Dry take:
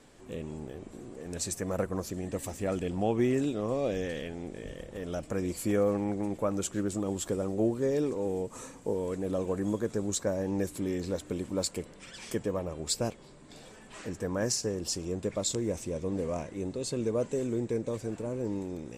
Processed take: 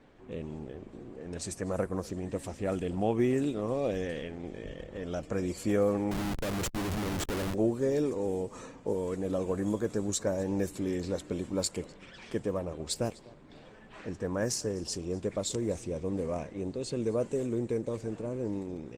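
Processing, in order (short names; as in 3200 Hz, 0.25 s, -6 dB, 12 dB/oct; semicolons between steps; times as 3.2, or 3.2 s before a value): echo 0.25 s -22.5 dB; low-pass opened by the level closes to 2900 Hz, open at -26 dBFS; 6.11–7.54 Schmitt trigger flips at -34.5 dBFS; Opus 24 kbps 48000 Hz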